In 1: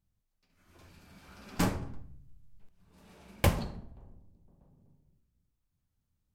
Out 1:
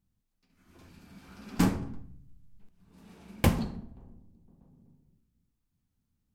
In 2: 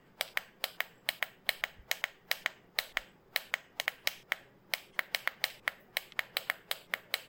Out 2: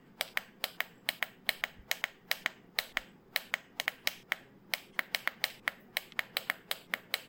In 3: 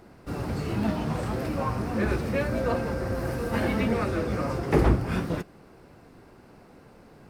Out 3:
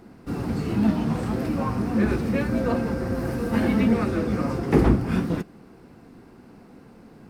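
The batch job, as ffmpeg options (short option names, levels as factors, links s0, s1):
-af "equalizer=f=230:t=o:w=1:g=8,bandreject=f=590:w=12"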